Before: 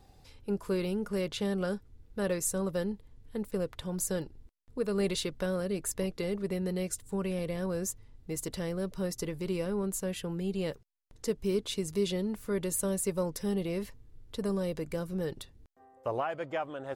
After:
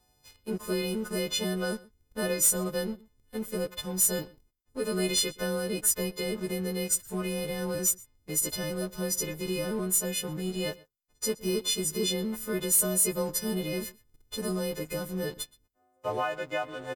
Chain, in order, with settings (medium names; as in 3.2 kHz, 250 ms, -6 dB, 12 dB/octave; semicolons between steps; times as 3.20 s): partials quantised in pitch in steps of 3 st; waveshaping leveller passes 2; echo from a far wall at 21 m, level -22 dB; trim -6.5 dB